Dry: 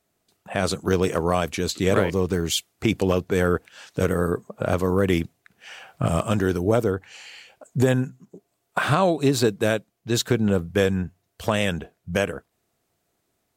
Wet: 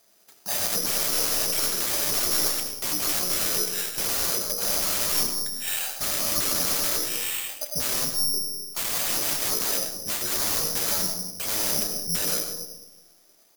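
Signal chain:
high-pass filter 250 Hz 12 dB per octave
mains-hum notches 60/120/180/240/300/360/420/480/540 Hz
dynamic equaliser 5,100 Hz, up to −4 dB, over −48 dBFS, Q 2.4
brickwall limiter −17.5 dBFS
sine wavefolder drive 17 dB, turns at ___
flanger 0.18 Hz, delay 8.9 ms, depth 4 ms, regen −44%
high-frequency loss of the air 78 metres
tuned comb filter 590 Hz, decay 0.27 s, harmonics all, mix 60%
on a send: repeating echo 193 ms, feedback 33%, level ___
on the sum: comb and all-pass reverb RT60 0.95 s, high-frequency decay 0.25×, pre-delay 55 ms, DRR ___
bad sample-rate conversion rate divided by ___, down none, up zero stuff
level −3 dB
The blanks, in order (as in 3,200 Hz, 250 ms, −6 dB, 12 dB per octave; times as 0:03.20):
−17.5 dBFS, −23 dB, 5.5 dB, 8×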